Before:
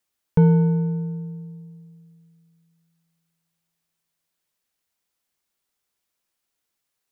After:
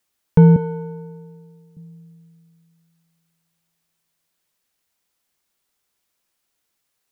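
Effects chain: 0.56–1.77 Bessel high-pass 450 Hz, order 2; gain +5 dB

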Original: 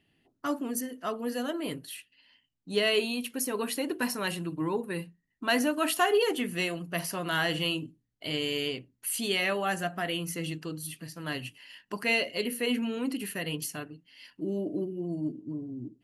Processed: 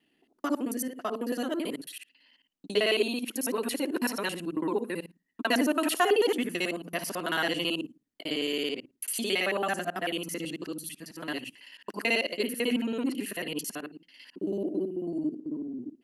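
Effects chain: local time reversal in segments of 55 ms; resonant low shelf 170 Hz -13 dB, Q 1.5

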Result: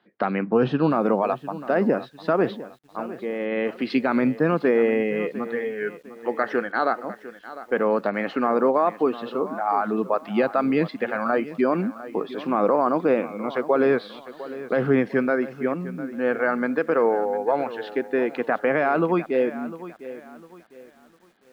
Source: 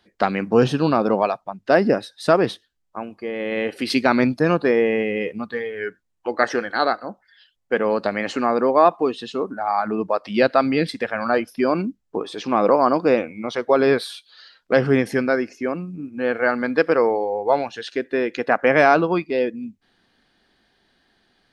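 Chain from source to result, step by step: HPF 140 Hz 24 dB/oct; bell 1300 Hz +3 dB 0.47 oct; limiter -9 dBFS, peak gain reduction 8 dB; air absorption 370 m; lo-fi delay 0.703 s, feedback 35%, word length 8-bit, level -15 dB

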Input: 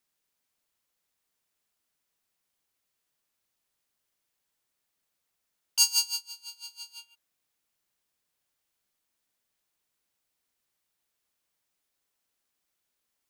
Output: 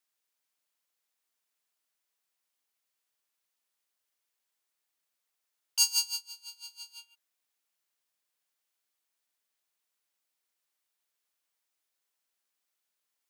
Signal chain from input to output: HPF 560 Hz 6 dB/oct; gain -2.5 dB

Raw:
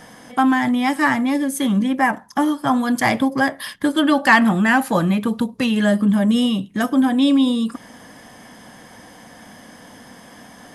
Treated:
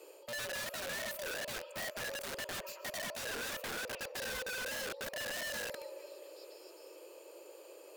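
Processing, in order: HPF 68 Hz 24 dB/oct; passive tone stack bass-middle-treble 10-0-1; delay with a stepping band-pass 0.35 s, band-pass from 640 Hz, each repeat 0.7 oct, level -8 dB; reverse; compressor 6:1, threshold -46 dBFS, peak gain reduction 15.5 dB; reverse; frequency shift +170 Hz; reverb RT60 3.9 s, pre-delay 0.115 s, DRR 12 dB; wrapped overs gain 44.5 dB; speed mistake 33 rpm record played at 45 rpm; gain +8.5 dB

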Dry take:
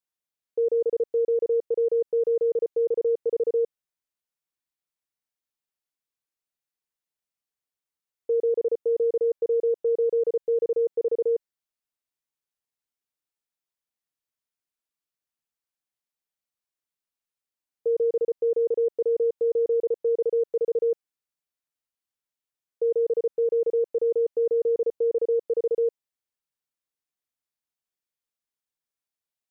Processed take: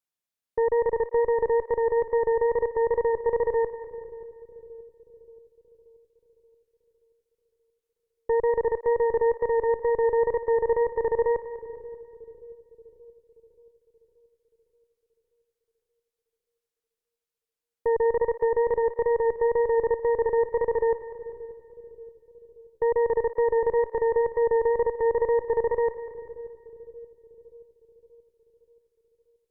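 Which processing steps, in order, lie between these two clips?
added harmonics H 2 -10 dB, 4 -20 dB, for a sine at -18.5 dBFS; wow and flutter 23 cents; split-band echo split 460 Hz, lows 0.579 s, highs 0.197 s, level -13.5 dB

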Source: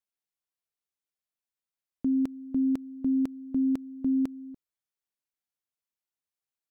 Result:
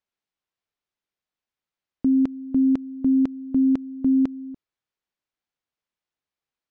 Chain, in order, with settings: air absorption 130 m; gain +7 dB

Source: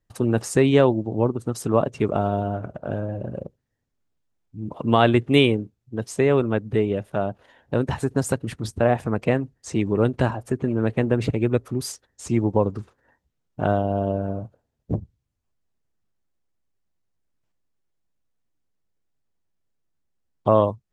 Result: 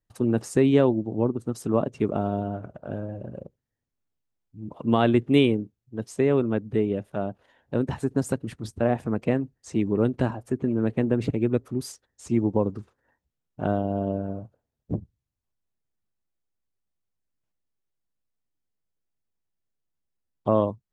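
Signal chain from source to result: dynamic EQ 250 Hz, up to +7 dB, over -31 dBFS, Q 0.78; gain -7 dB

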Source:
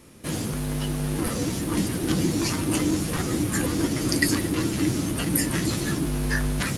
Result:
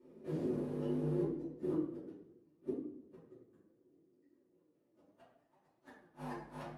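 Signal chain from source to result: switching dead time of 0.053 ms; flipped gate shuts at -16 dBFS, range -41 dB; band-pass sweep 390 Hz -> 820 Hz, 4.27–5.43; reverb RT60 0.60 s, pre-delay 3 ms, DRR -10 dB; flange 0.69 Hz, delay 2.9 ms, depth 7.4 ms, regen +55%; high shelf 9500 Hz +11 dB; warbling echo 95 ms, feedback 58%, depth 167 cents, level -18 dB; gain -7.5 dB

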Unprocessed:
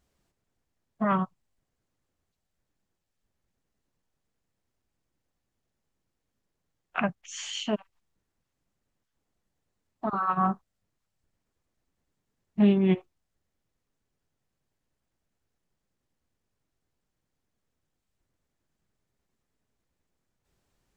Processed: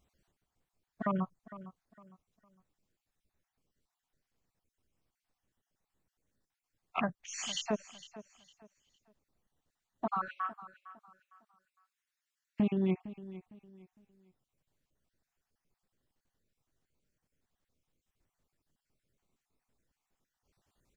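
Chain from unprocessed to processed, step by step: random spectral dropouts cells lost 37%; 10.28–12.6 HPF 1400 Hz 24 dB/oct; compressor 2.5:1, threshold -30 dBFS, peak gain reduction 9.5 dB; on a send: feedback echo 0.457 s, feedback 30%, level -16 dB

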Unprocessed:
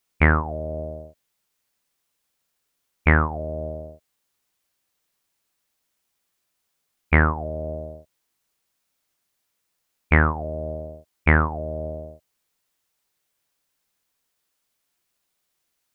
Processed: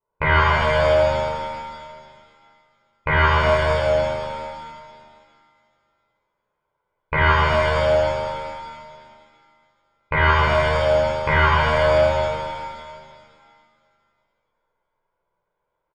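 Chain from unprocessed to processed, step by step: compressor 4:1, threshold -23 dBFS, peak gain reduction 10.5 dB; comb 2 ms, depth 81%; low-pass opened by the level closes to 680 Hz, open at -26.5 dBFS; bell 950 Hz +12.5 dB 1.1 oct; vibrato 1 Hz 12 cents; bell 68 Hz -7 dB 0.79 oct; shimmer reverb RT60 2.1 s, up +7 st, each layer -8 dB, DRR -9.5 dB; gain -4.5 dB

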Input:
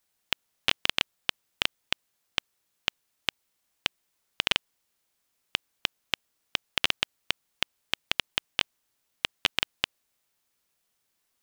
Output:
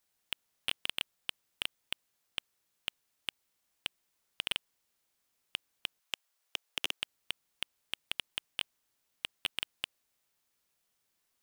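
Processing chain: 5.99–7.01 HPF 720 Hz -> 320 Hz 24 dB/oct; soft clip -14.5 dBFS, distortion -7 dB; gain -2.5 dB

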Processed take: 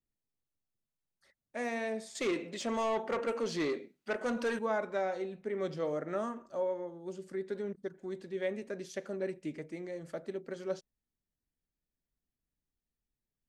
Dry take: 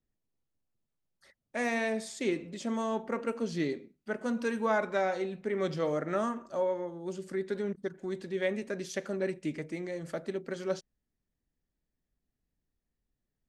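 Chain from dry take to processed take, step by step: dynamic EQ 500 Hz, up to +4 dB, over -41 dBFS, Q 0.79; 2.15–4.59 overdrive pedal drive 19 dB, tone 6100 Hz, clips at -17 dBFS; gain -7 dB

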